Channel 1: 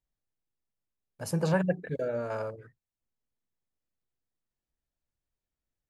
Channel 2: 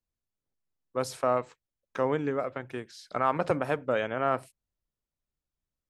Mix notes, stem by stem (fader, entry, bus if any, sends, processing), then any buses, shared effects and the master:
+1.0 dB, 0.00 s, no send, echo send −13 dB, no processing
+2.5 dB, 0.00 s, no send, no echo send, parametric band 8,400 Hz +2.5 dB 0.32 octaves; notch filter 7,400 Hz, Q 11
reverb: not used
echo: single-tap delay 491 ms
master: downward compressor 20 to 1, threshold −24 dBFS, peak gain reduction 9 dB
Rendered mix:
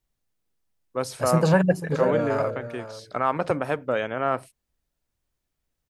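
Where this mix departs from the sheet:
stem 1 +1.0 dB → +7.5 dB
master: missing downward compressor 20 to 1, threshold −24 dBFS, peak gain reduction 9 dB

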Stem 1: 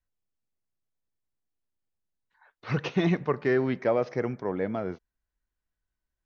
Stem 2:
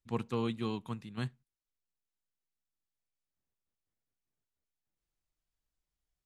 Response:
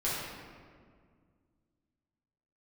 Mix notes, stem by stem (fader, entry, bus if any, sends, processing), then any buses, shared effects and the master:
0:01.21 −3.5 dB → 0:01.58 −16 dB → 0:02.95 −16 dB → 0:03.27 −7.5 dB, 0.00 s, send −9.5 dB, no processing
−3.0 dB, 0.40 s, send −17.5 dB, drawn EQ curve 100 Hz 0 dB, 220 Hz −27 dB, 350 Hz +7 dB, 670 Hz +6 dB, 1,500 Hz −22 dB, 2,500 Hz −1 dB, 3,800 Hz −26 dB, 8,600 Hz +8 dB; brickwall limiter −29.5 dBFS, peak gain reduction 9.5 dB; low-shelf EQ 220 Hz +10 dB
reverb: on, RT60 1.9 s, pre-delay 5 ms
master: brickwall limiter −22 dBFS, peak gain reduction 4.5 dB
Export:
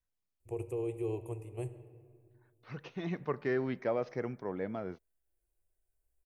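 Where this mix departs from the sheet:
stem 1: send off
master: missing brickwall limiter −22 dBFS, peak gain reduction 4.5 dB

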